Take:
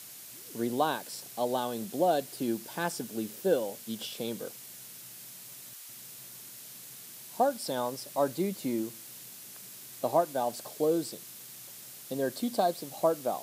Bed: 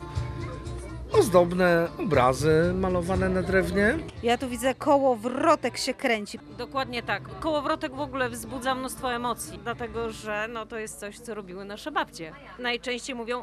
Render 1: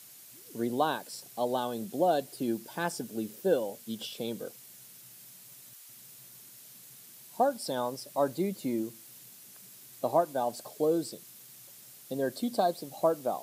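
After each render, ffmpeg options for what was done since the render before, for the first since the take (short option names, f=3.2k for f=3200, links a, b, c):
-af "afftdn=nr=6:nf=-47"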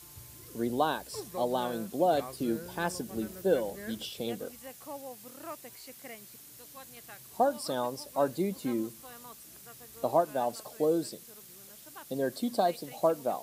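-filter_complex "[1:a]volume=-22dB[a];[0:a][a]amix=inputs=2:normalize=0"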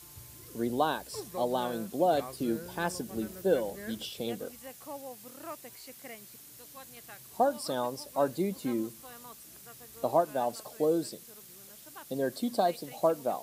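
-af anull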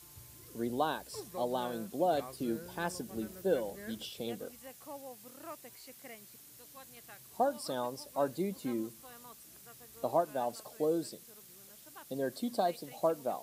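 -af "volume=-4dB"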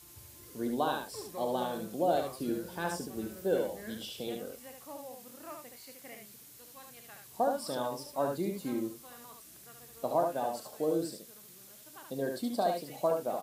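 -filter_complex "[0:a]asplit=2[a][b];[b]adelay=29,volume=-12dB[c];[a][c]amix=inputs=2:normalize=0,asplit=2[d][e];[e]aecho=0:1:72:0.596[f];[d][f]amix=inputs=2:normalize=0"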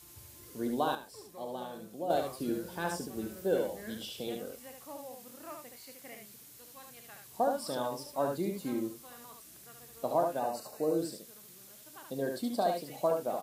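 -filter_complex "[0:a]asettb=1/sr,asplit=3[a][b][c];[a]atrim=end=10.394[d];[b]atrim=start=10.39:end=10.98,asetpts=PTS-STARTPTS,afade=t=in:d=0.004:c=qsin,afade=t=out:st=0.586:d=0.004:c=qsin,asuperstop=centerf=3300:order=12:qfactor=5.4[e];[c]atrim=start=10.976[f];[d][e]acrossfade=d=0.004:c1=hsin:c2=qsin[g];[g][f]acrossfade=d=0.004:c1=qsin:c2=hsin,asplit=3[h][i][j];[h]atrim=end=0.952[k];[i]atrim=start=0.948:end=2.102,asetpts=PTS-STARTPTS,volume=-7.5dB[l];[j]atrim=start=2.098[m];[k][l]acrossfade=d=0.004:c1=hsin:c2=hsin[n];[n][m]acrossfade=d=0.004:c1=hsin:c2=hsin"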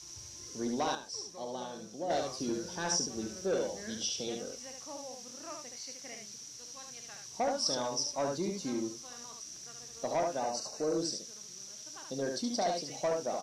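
-af "asoftclip=type=tanh:threshold=-24.5dB,lowpass=f=5.8k:t=q:w=13"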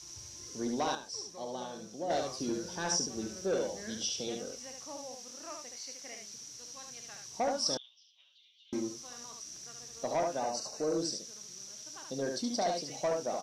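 -filter_complex "[0:a]asettb=1/sr,asplit=3[a][b][c];[a]atrim=end=5.154[d];[b]atrim=start=5.15:end=6.34,asetpts=PTS-STARTPTS,afade=t=in:d=0.004:c=qsin,afade=t=out:st=1.186:d=0.004:c=qsin,equalizer=f=140:w=1:g=-7.5[e];[c]atrim=start=6.336[f];[d][e]acrossfade=d=0.004:c1=hsin:c2=qsin[g];[g][f]acrossfade=d=0.004:c1=qsin:c2=hsin,asettb=1/sr,asplit=3[h][i][j];[h]atrim=end=7.774[k];[i]atrim=start=7.77:end=8.73,asetpts=PTS-STARTPTS,afade=t=in:d=0.004:c=qsin,afade=t=out:st=0.956:d=0.004:c=qsin,asuperpass=centerf=3200:order=4:qfactor=5.2[l];[j]atrim=start=8.726[m];[k][l]acrossfade=d=0.004:c1=hsin:c2=qsin[n];[n][m]acrossfade=d=0.004:c1=qsin:c2=hsin"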